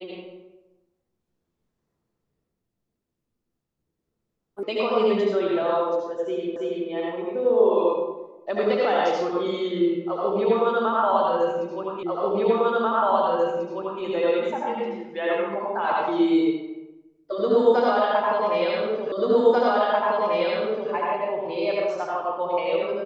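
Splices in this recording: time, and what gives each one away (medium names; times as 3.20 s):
4.63 s: sound stops dead
6.56 s: repeat of the last 0.33 s
12.03 s: repeat of the last 1.99 s
19.12 s: repeat of the last 1.79 s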